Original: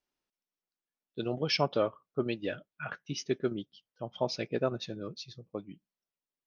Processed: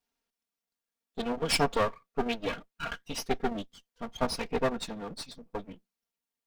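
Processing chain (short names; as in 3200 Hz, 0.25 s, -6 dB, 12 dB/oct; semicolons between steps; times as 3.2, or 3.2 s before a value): minimum comb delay 4.3 ms; gain +4.5 dB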